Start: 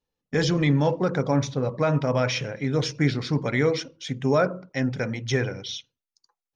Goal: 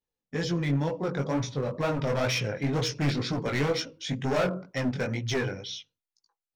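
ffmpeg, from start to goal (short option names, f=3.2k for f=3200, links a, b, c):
-af "dynaudnorm=f=450:g=7:m=9dB,volume=15.5dB,asoftclip=hard,volume=-15.5dB,flanger=delay=16.5:depth=5.3:speed=2.1,volume=-4dB"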